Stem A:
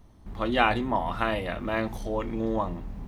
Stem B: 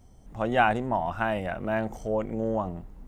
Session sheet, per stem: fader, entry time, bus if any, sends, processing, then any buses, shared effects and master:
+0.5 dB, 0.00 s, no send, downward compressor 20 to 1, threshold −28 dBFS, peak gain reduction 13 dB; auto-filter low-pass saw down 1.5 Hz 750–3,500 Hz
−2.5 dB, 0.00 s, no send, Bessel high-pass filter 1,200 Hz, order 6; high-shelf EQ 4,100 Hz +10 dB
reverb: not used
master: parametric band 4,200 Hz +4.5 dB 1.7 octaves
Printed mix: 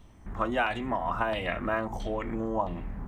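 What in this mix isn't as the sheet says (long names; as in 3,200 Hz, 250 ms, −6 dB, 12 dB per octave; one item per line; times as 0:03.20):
stem B: missing high-shelf EQ 4,100 Hz +10 dB
master: missing parametric band 4,200 Hz +4.5 dB 1.7 octaves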